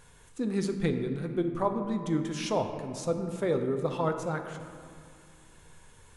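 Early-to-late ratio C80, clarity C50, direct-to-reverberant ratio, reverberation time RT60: 8.5 dB, 7.5 dB, 5.5 dB, 2.2 s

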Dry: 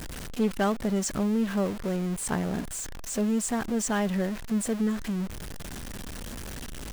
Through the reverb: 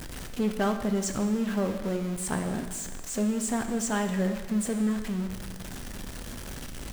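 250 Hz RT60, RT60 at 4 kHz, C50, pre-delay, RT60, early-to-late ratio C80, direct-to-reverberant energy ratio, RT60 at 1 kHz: 1.3 s, 1.3 s, 8.5 dB, 4 ms, 1.4 s, 10.0 dB, 6.0 dB, 1.4 s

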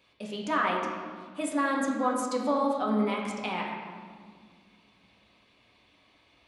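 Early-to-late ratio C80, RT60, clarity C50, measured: 4.0 dB, 1.8 s, 2.5 dB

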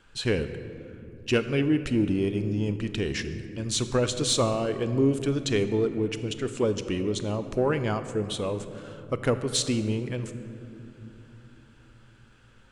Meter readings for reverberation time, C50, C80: 2.9 s, 10.5 dB, 11.5 dB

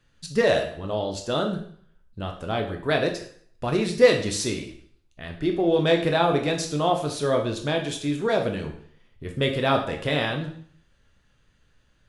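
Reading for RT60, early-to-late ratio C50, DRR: 0.55 s, 8.0 dB, 2.5 dB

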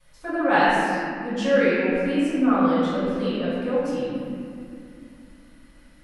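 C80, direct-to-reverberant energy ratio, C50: −1.5 dB, −14.5 dB, −3.5 dB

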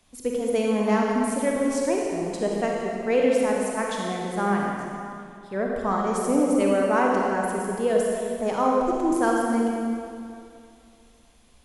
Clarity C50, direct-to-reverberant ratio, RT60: −1.0 dB, −2.0 dB, 2.4 s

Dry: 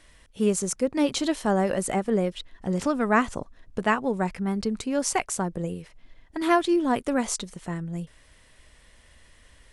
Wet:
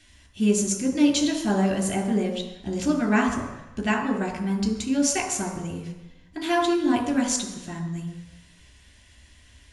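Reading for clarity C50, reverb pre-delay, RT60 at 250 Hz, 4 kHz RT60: 7.0 dB, 3 ms, 1.0 s, 1.1 s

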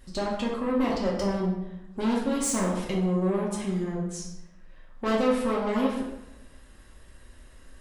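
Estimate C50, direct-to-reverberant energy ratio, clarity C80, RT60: 3.5 dB, −4.5 dB, 6.0 dB, 0.95 s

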